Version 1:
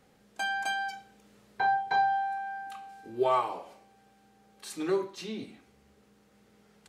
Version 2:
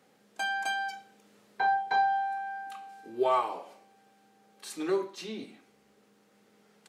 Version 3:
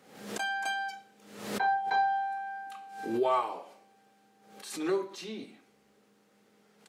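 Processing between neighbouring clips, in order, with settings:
HPF 200 Hz 12 dB/oct
backwards sustainer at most 75 dB/s; gain -1.5 dB

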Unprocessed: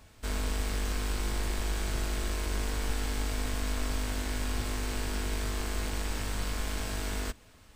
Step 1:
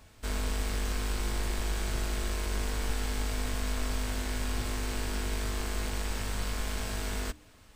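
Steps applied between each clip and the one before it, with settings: de-hum 75.07 Hz, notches 4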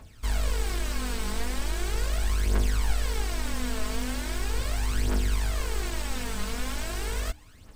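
phaser 0.39 Hz, delay 4.8 ms, feedback 63%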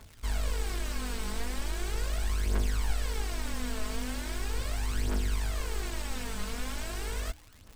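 crackle 160/s -37 dBFS; gain -4 dB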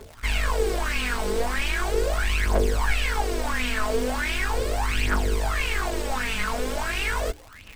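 LFO bell 1.5 Hz 410–2700 Hz +18 dB; gain +5 dB

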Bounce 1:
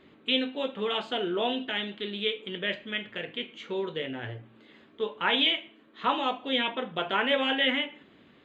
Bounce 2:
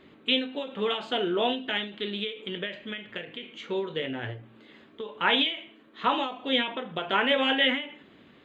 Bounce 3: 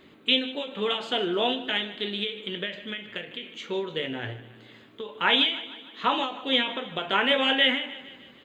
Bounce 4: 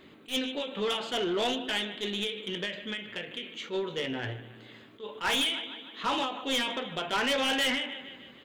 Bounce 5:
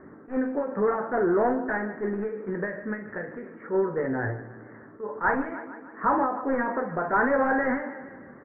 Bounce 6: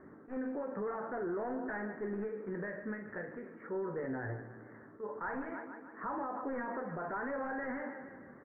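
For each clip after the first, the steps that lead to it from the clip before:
ending taper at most 110 dB/s; gain +2.5 dB
high shelf 4700 Hz +10 dB; feedback echo 0.153 s, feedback 55%, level -16.5 dB
soft clip -23.5 dBFS, distortion -8 dB; attack slew limiter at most 280 dB/s
steep low-pass 1800 Hz 72 dB/oct; doubler 47 ms -14 dB; gain +7 dB
limiter -24 dBFS, peak gain reduction 10.5 dB; gain -7 dB

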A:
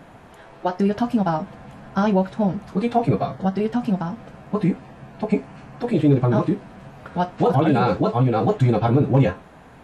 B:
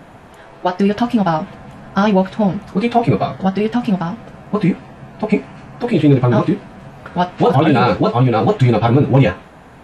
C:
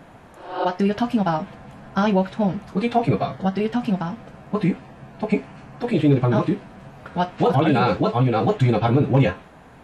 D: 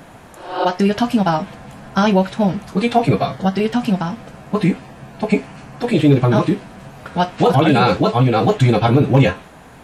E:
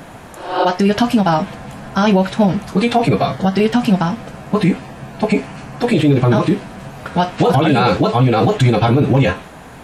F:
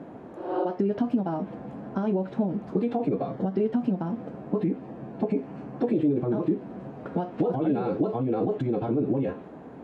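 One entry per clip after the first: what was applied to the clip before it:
dynamic EQ 2800 Hz, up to +6 dB, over -44 dBFS, Q 0.83; gain +5 dB
spectral repair 0.33–0.62, 270–5400 Hz both; gain -5.5 dB
high shelf 4500 Hz +10 dB; gain +4.5 dB
limiter -10 dBFS, peak gain reduction 8 dB; gain +5 dB
compressor, threshold -18 dBFS, peak gain reduction 9.5 dB; band-pass 330 Hz, Q 1.5

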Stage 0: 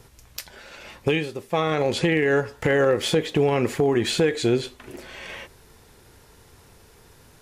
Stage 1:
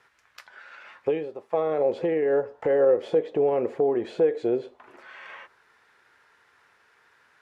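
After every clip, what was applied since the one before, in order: auto-wah 540–1700 Hz, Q 2.1, down, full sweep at -23 dBFS; gain +2 dB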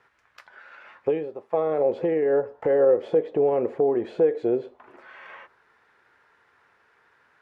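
high shelf 3000 Hz -11 dB; gain +1.5 dB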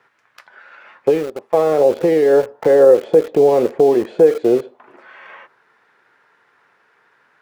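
HPF 120 Hz 24 dB/oct; in parallel at -3 dB: sample gate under -31 dBFS; on the sum: gain +4.5 dB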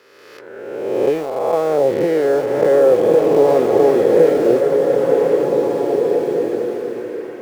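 spectral swells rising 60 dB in 1.55 s; bloom reverb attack 2.2 s, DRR 1.5 dB; gain -4 dB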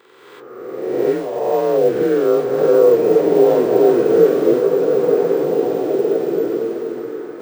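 inharmonic rescaling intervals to 89%; careless resampling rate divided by 2×, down filtered, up hold; gain +2 dB

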